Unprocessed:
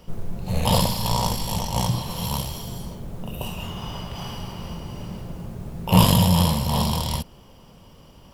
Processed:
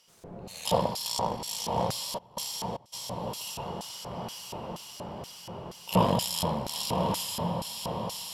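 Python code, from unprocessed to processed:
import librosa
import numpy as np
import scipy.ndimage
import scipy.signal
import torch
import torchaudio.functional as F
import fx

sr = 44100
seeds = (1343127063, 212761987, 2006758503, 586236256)

y = fx.echo_diffused(x, sr, ms=1095, feedback_pct=53, wet_db=-4.0)
y = fx.step_gate(y, sr, bpm=190, pattern='...xxxxx.', floor_db=-24.0, edge_ms=4.5, at=(2.17, 2.92), fade=0.02)
y = fx.filter_lfo_bandpass(y, sr, shape='square', hz=2.1, low_hz=570.0, high_hz=6700.0, q=0.95)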